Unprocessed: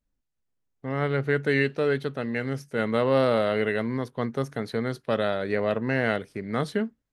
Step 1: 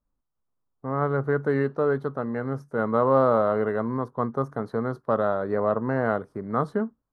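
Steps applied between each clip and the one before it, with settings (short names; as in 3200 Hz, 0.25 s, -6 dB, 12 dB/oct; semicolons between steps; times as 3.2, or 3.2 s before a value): resonant high shelf 1700 Hz -13.5 dB, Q 3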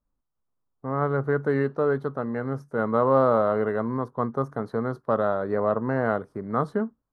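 nothing audible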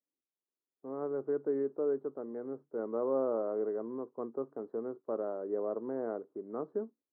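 ladder band-pass 400 Hz, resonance 50%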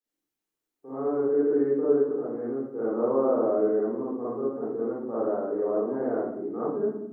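reverb RT60 0.80 s, pre-delay 37 ms, DRR -9.5 dB; gain -3 dB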